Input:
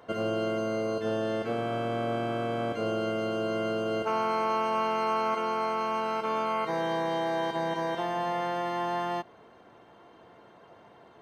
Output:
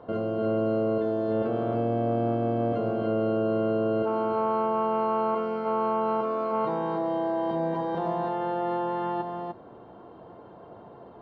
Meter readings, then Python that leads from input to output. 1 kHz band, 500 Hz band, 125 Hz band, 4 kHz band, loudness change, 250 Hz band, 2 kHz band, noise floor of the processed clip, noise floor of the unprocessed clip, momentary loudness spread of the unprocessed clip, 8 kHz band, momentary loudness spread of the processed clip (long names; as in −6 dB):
+0.5 dB, +3.5 dB, +5.5 dB, below −10 dB, +2.5 dB, +5.0 dB, −7.5 dB, −48 dBFS, −55 dBFS, 3 LU, can't be measured, 3 LU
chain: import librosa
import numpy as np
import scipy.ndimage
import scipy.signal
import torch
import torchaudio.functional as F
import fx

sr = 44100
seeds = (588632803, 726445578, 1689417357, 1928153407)

p1 = fx.peak_eq(x, sr, hz=2100.0, db=-13.0, octaves=1.2)
p2 = fx.over_compress(p1, sr, threshold_db=-35.0, ratio=-0.5)
p3 = p1 + F.gain(torch.from_numpy(p2), -1.0).numpy()
p4 = fx.quant_float(p3, sr, bits=4)
p5 = fx.air_absorb(p4, sr, metres=390.0)
y = p5 + 10.0 ** (-5.0 / 20.0) * np.pad(p5, (int(300 * sr / 1000.0), 0))[:len(p5)]